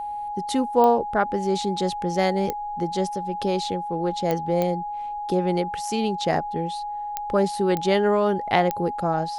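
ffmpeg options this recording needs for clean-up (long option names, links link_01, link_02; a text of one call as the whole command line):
ffmpeg -i in.wav -af "adeclick=threshold=4,bandreject=frequency=830:width=30" out.wav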